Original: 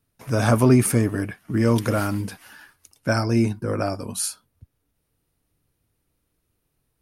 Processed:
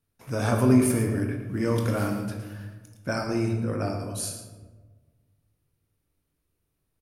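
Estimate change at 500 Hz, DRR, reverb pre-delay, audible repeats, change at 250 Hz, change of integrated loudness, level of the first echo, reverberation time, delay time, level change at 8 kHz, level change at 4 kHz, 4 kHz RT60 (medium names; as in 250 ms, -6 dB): -4.0 dB, 2.0 dB, 20 ms, 1, -3.5 dB, -4.0 dB, -11.0 dB, 1.4 s, 114 ms, -5.5 dB, -5.5 dB, 0.70 s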